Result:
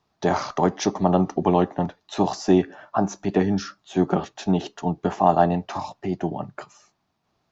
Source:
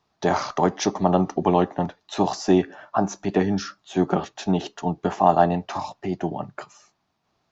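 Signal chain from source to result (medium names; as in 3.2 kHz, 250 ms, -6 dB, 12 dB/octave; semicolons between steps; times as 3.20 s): bass shelf 440 Hz +3 dB; trim -1.5 dB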